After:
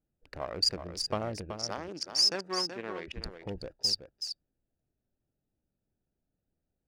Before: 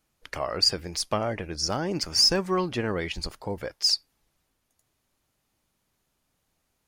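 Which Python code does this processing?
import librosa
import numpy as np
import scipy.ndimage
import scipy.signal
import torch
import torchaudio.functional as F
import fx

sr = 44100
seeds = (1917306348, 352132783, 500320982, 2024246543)

y = fx.wiener(x, sr, points=41)
y = fx.weighting(y, sr, curve='A', at=(1.51, 3.08))
y = y + 10.0 ** (-8.5 / 20.0) * np.pad(y, (int(377 * sr / 1000.0), 0))[:len(y)]
y = F.gain(torch.from_numpy(y), -5.0).numpy()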